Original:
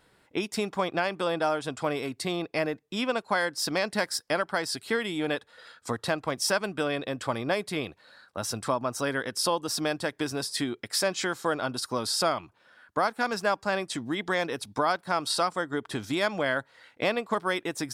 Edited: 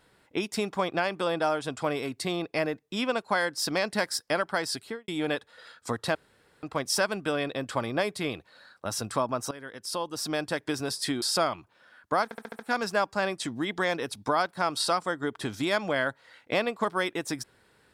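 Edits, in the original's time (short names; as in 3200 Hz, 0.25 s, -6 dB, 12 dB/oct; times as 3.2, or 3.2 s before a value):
4.75–5.08 studio fade out
6.15 insert room tone 0.48 s
9.03–10.06 fade in linear, from -17.5 dB
10.74–12.07 cut
13.09 stutter 0.07 s, 6 plays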